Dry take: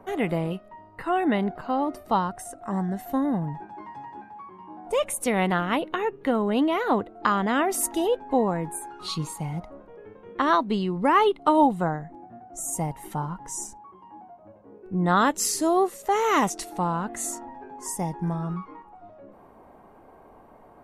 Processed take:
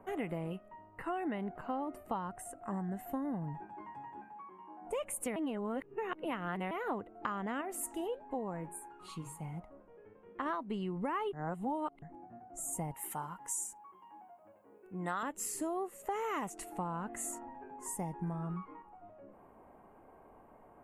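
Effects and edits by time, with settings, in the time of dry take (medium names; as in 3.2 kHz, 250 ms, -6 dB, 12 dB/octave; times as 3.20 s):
4.24–4.80 s: high-pass 110 Hz -> 400 Hz
5.36–6.71 s: reverse
7.61–10.46 s: flange 1.5 Hz, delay 4.3 ms, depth 6.8 ms, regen -84%
11.33–12.02 s: reverse
12.94–15.23 s: tilt EQ +3.5 dB/octave
whole clip: compression 6:1, threshold -26 dBFS; high-order bell 4.6 kHz -11 dB 1 oct; trim -7.5 dB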